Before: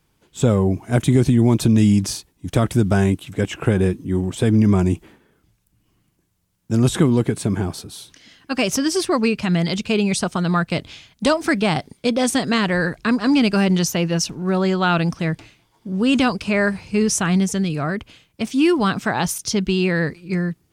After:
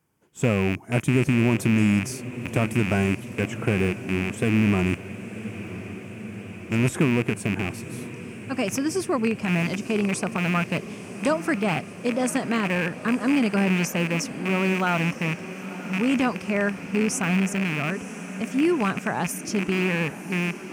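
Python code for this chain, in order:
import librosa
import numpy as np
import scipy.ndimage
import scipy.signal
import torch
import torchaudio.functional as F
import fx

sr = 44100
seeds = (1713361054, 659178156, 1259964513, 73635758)

y = fx.rattle_buzz(x, sr, strikes_db=-22.0, level_db=-9.0)
y = scipy.signal.sosfilt(scipy.signal.butter(2, 100.0, 'highpass', fs=sr, output='sos'), y)
y = fx.peak_eq(y, sr, hz=3900.0, db=-13.0, octaves=0.76)
y = fx.echo_diffused(y, sr, ms=996, feedback_pct=73, wet_db=-14.5)
y = y * librosa.db_to_amplitude(-5.0)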